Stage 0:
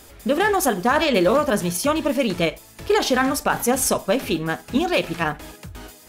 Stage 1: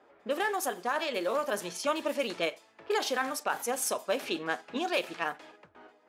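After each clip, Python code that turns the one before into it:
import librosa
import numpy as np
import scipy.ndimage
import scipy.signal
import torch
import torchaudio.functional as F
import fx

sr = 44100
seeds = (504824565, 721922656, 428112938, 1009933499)

y = scipy.signal.sosfilt(scipy.signal.butter(2, 410.0, 'highpass', fs=sr, output='sos'), x)
y = fx.env_lowpass(y, sr, base_hz=1200.0, full_db=-19.0)
y = fx.rider(y, sr, range_db=4, speed_s=0.5)
y = F.gain(torch.from_numpy(y), -9.0).numpy()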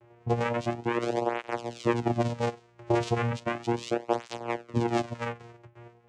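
y = fx.vocoder(x, sr, bands=4, carrier='saw', carrier_hz=118.0)
y = fx.flanger_cancel(y, sr, hz=0.35, depth_ms=4.2)
y = F.gain(torch.from_numpy(y), 7.0).numpy()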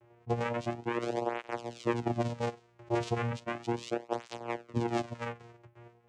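y = fx.attack_slew(x, sr, db_per_s=600.0)
y = F.gain(torch.from_numpy(y), -4.5).numpy()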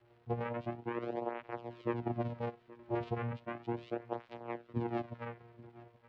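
y = fx.dmg_crackle(x, sr, seeds[0], per_s=480.0, level_db=-49.0)
y = fx.air_absorb(y, sr, metres=390.0)
y = y + 10.0 ** (-20.0 / 20.0) * np.pad(y, (int(825 * sr / 1000.0), 0))[:len(y)]
y = F.gain(torch.from_numpy(y), -4.0).numpy()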